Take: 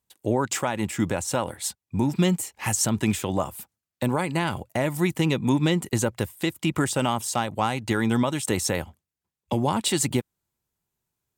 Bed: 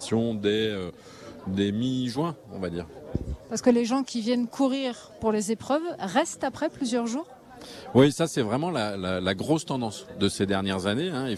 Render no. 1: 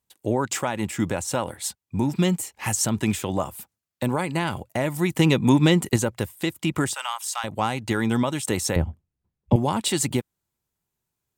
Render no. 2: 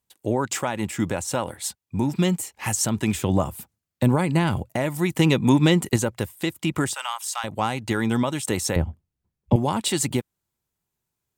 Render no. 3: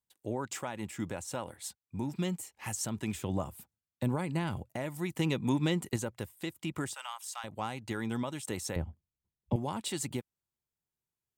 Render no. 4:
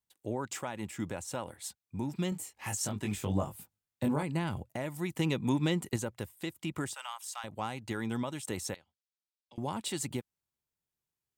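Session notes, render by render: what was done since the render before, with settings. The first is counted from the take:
5.16–5.96 s: gain +4.5 dB; 6.94–7.44 s: high-pass 950 Hz 24 dB/octave; 8.76–9.56 s: tilt EQ -4 dB/octave
3.15–4.76 s: bass shelf 290 Hz +9.5 dB
trim -12 dB
2.30–4.23 s: doubling 20 ms -4 dB; 8.74–9.58 s: band-pass filter 4.4 kHz, Q 1.9

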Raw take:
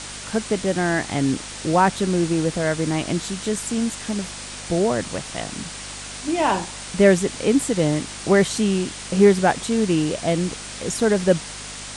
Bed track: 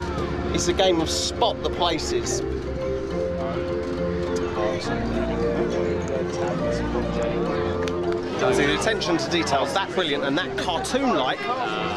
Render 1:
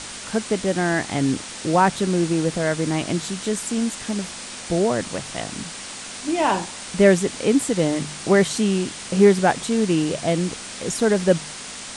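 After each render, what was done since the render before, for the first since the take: de-hum 50 Hz, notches 3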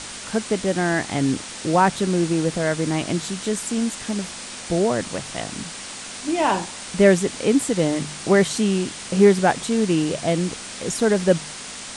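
no audible change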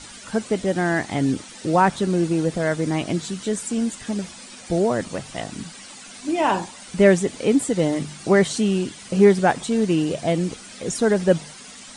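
noise reduction 11 dB, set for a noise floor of -35 dBFS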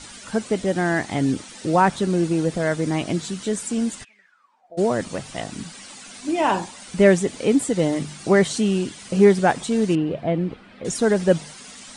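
4.03–4.77 s: band-pass filter 2.8 kHz -> 570 Hz, Q 17; 9.95–10.85 s: distance through air 440 m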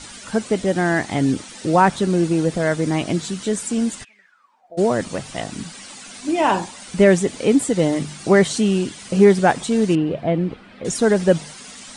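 trim +2.5 dB; peak limiter -2 dBFS, peak gain reduction 2.5 dB

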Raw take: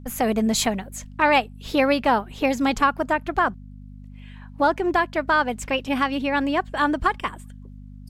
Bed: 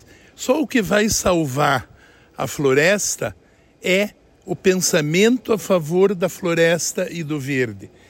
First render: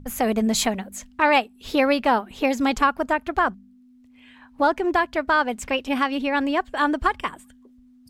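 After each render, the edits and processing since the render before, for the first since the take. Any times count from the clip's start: de-hum 50 Hz, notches 4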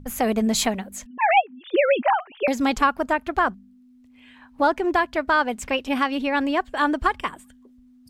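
1.06–2.48 s: formants replaced by sine waves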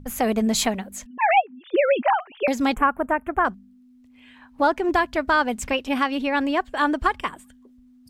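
1.35–1.96 s: Bessel low-pass 2.5 kHz; 2.74–3.45 s: Butterworth band-stop 4.7 kHz, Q 0.63; 4.89–5.73 s: tone controls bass +5 dB, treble +3 dB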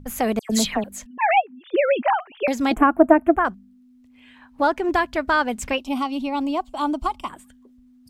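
0.39–0.84 s: phase dispersion lows, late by 106 ms, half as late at 2.4 kHz; 2.71–3.36 s: small resonant body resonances 320/660 Hz, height 15 dB; 5.78–7.30 s: static phaser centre 460 Hz, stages 6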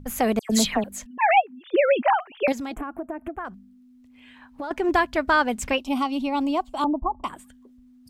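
2.52–4.71 s: compression 8:1, threshold -29 dBFS; 6.84–7.24 s: steep low-pass 1.1 kHz 72 dB/octave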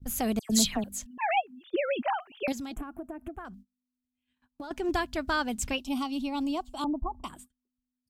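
gate -45 dBFS, range -30 dB; ten-band graphic EQ 250 Hz -3 dB, 500 Hz -9 dB, 1 kHz -7 dB, 2 kHz -9 dB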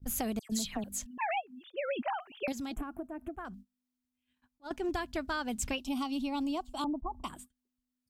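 compression 12:1, threshold -30 dBFS, peak gain reduction 12 dB; attacks held to a fixed rise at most 510 dB/s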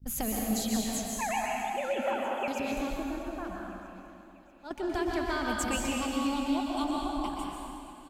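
feedback delay 641 ms, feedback 54%, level -20 dB; plate-style reverb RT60 2.4 s, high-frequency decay 0.85×, pre-delay 110 ms, DRR -2.5 dB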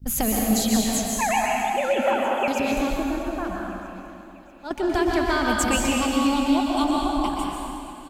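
trim +9 dB

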